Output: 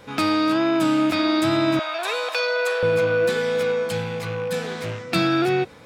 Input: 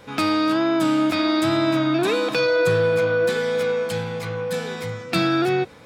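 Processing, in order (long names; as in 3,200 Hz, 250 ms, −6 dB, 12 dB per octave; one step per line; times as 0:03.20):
loose part that buzzes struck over −32 dBFS, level −29 dBFS
0:01.79–0:02.83: Butterworth high-pass 530 Hz 36 dB per octave
0:04.62–0:05.11: highs frequency-modulated by the lows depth 0.32 ms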